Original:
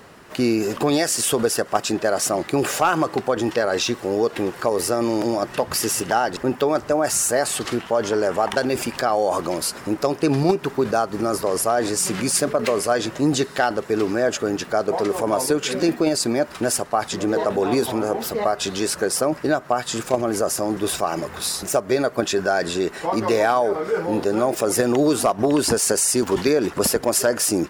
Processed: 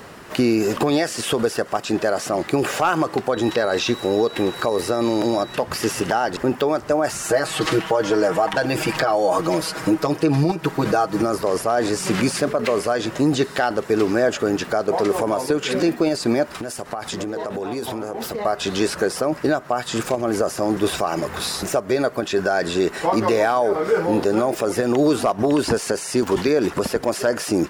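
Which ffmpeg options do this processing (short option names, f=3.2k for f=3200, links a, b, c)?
-filter_complex "[0:a]asettb=1/sr,asplit=3[a][b][c];[a]atrim=end=3.334[d];[b]atrim=start=3.33:end=5.55,asetpts=PTS-STARTPTS,afade=t=in:d=0.004:c=qsin,afade=t=out:st=2.216:d=0.004:c=qsin,aeval=exprs='val(0)+0.0112*sin(2*PI*3900*n/s)':c=same[e];[c]atrim=start=5.546[f];[d][e]acrossfade=d=0.004:c1=hsin:c2=qsin[g];[g][f]acrossfade=d=0.004:c1=qsin:c2=hsin,asettb=1/sr,asplit=3[h][i][j];[h]atrim=end=7.244[k];[i]atrim=start=7.24:end=11.22,asetpts=PTS-STARTPTS,afade=t=in:d=0.004:c=qsin,afade=t=out:st=3.976:d=0.004:c=qsin,aecho=1:1:6.3:1,atrim=end_sample=175518[l];[j]atrim=start=11.216[m];[k][l]acrossfade=d=0.004:c1=hsin:c2=qsin[n];[n][m]acrossfade=d=0.004:c1=qsin:c2=hsin,asettb=1/sr,asplit=3[o][p][q];[o]atrim=end=16.514[r];[p]atrim=start=16.51:end=18.45,asetpts=PTS-STARTPTS,afade=t=in:d=0.004:c=qsin,afade=t=out:st=1.936:d=0.004:c=qsin,acompressor=threshold=-28dB:ratio=16:attack=3.2:release=140:knee=1:detection=peak[s];[q]atrim=start=18.446[t];[r][s]acrossfade=d=0.004:c1=hsin:c2=qsin[u];[u][t]acrossfade=d=0.004:c1=qsin:c2=hsin,acrossover=split=4100[v][w];[w]acompressor=threshold=-34dB:ratio=4:attack=1:release=60[x];[v][x]amix=inputs=2:normalize=0,alimiter=limit=-14.5dB:level=0:latency=1:release=375,volume=5.5dB"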